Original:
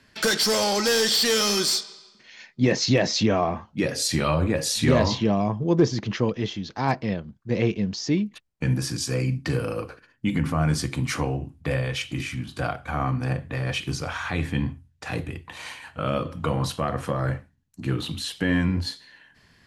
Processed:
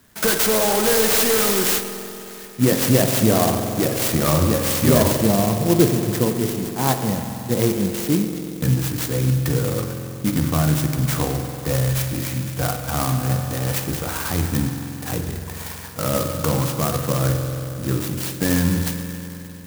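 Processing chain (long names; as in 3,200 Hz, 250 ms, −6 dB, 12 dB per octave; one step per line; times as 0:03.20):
spring reverb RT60 3.4 s, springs 46 ms, chirp 75 ms, DRR 4.5 dB
converter with an unsteady clock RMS 0.11 ms
level +3.5 dB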